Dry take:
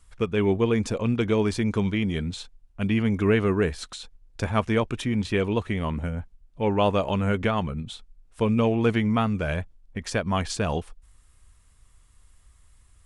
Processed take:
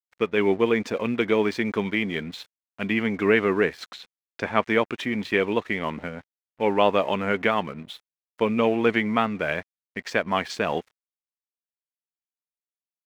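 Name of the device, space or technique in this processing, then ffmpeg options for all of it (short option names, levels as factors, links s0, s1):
pocket radio on a weak battery: -filter_complex "[0:a]highpass=260,lowpass=4400,aeval=exprs='sgn(val(0))*max(abs(val(0))-0.00266,0)':c=same,equalizer=f=2000:t=o:w=0.51:g=6,asettb=1/sr,asplit=3[s0][s1][s2];[s0]atrim=end=3.894[s3];[s1]atrim=start=3.89:end=4.65,asetpts=PTS-STARTPTS,afade=t=in:d=0.004:c=qsin,afade=t=out:st=0.756:d=0.004:c=qsin,highshelf=f=9100:g=-11[s4];[s2]atrim=start=4.646[s5];[s3][s4]acrossfade=d=0.004:c1=hsin:c2=qsin[s6];[s6][s5]acrossfade=d=0.004:c1=qsin:c2=hsin,volume=1.41"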